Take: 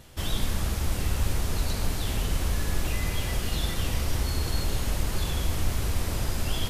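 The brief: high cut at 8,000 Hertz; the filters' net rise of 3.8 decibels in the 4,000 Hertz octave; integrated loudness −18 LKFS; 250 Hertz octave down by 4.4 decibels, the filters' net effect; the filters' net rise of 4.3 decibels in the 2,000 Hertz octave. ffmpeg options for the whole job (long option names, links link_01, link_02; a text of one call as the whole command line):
ffmpeg -i in.wav -af "lowpass=8000,equalizer=frequency=250:width_type=o:gain=-6.5,equalizer=frequency=2000:width_type=o:gain=4.5,equalizer=frequency=4000:width_type=o:gain=3.5,volume=11.5dB" out.wav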